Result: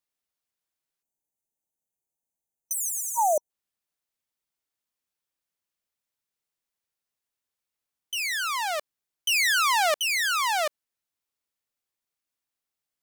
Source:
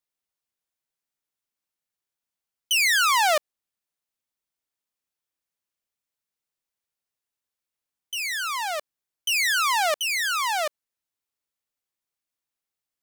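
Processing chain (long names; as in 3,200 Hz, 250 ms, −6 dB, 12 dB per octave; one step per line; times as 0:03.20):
time-frequency box erased 0:01.03–0:03.50, 950–5,900 Hz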